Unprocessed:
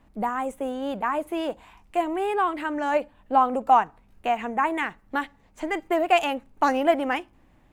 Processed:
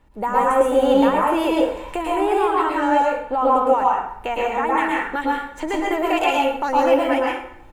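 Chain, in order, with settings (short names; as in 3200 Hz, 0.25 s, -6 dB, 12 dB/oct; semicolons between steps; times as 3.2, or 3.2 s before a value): recorder AGC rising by 12 dB/s; comb 2.2 ms, depth 44%; limiter -14.5 dBFS, peak gain reduction 6.5 dB; plate-style reverb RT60 0.7 s, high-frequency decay 0.75×, pre-delay 0.1 s, DRR -3.5 dB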